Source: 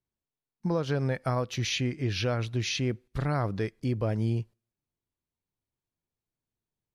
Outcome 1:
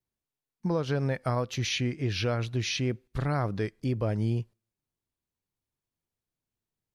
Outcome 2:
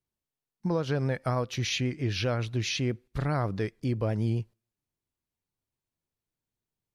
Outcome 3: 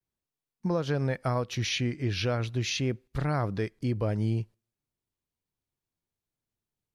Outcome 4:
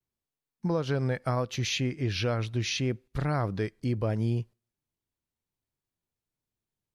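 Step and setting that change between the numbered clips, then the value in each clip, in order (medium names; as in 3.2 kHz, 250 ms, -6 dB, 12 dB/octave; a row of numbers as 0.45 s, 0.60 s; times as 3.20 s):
vibrato, rate: 2.1 Hz, 7.6 Hz, 0.42 Hz, 0.73 Hz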